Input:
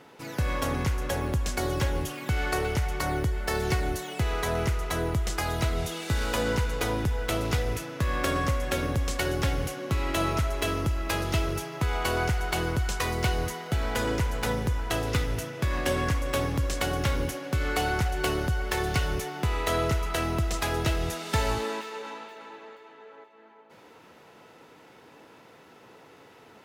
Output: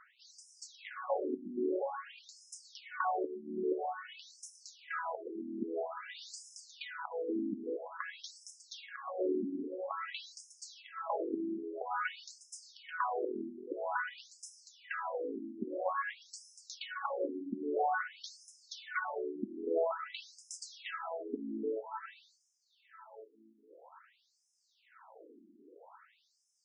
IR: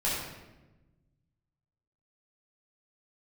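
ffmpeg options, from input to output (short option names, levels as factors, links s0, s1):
-af "highshelf=f=1800:t=q:w=1.5:g=-6.5,afftfilt=real='re*between(b*sr/1024,260*pow(7200/260,0.5+0.5*sin(2*PI*0.5*pts/sr))/1.41,260*pow(7200/260,0.5+0.5*sin(2*PI*0.5*pts/sr))*1.41)':imag='im*between(b*sr/1024,260*pow(7200/260,0.5+0.5*sin(2*PI*0.5*pts/sr))/1.41,260*pow(7200/260,0.5+0.5*sin(2*PI*0.5*pts/sr))*1.41)':win_size=1024:overlap=0.75"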